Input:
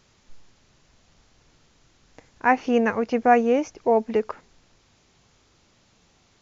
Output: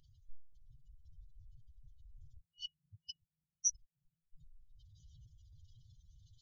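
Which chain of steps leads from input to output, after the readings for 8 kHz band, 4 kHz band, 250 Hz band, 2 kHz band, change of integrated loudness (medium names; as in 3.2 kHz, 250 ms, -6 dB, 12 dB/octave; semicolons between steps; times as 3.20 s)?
no reading, -3.5 dB, under -40 dB, under -40 dB, -18.5 dB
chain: spectral contrast enhancement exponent 3.6; resonant high shelf 1.8 kHz +8 dB, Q 1.5; FFT band-reject 170–2900 Hz; random-step tremolo 3.8 Hz; peaking EQ 160 Hz -11 dB 0.57 oct; trim +6.5 dB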